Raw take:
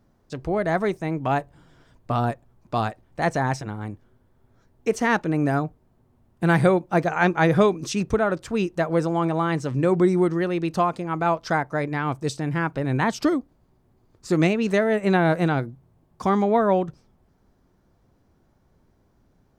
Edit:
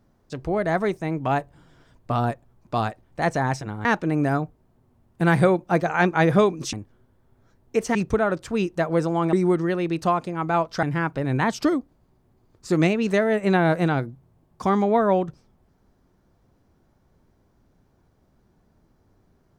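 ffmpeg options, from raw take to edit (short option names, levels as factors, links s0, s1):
-filter_complex "[0:a]asplit=6[s0][s1][s2][s3][s4][s5];[s0]atrim=end=3.852[s6];[s1]atrim=start=5.068:end=7.952[s7];[s2]atrim=start=3.848:end=5.072[s8];[s3]atrim=start=7.948:end=9.332[s9];[s4]atrim=start=10.048:end=11.552[s10];[s5]atrim=start=12.428[s11];[s6][s7]acrossfade=d=0.004:c1=hsin:c2=hsin[s12];[s12][s8]acrossfade=d=0.004:c1=hsin:c2=hsin[s13];[s13][s9]acrossfade=d=0.004:c1=hsin:c2=hsin[s14];[s14][s10]acrossfade=d=0.004:c1=hsin:c2=hsin[s15];[s15][s11]acrossfade=d=0.004:c1=hsin:c2=hsin"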